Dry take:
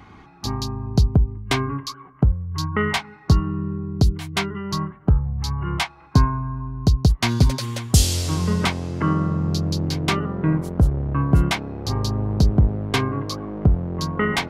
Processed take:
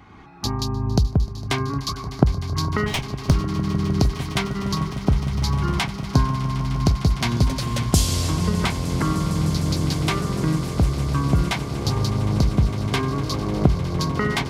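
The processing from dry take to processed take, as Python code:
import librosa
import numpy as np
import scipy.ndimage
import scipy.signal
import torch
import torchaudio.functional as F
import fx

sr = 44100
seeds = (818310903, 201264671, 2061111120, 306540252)

p1 = fx.lower_of_two(x, sr, delay_ms=0.33, at=(2.86, 3.36))
p2 = fx.recorder_agc(p1, sr, target_db=-10.5, rise_db_per_s=19.0, max_gain_db=30)
p3 = p2 + fx.echo_swell(p2, sr, ms=152, loudest=8, wet_db=-17.5, dry=0)
y = p3 * librosa.db_to_amplitude(-3.0)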